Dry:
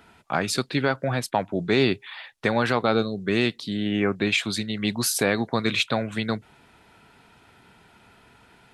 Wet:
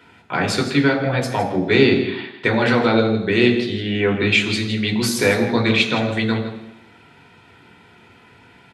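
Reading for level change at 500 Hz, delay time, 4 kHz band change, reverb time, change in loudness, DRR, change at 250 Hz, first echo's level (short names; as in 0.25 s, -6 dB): +6.5 dB, 0.162 s, +5.0 dB, 0.85 s, +6.0 dB, 1.0 dB, +7.0 dB, -12.0 dB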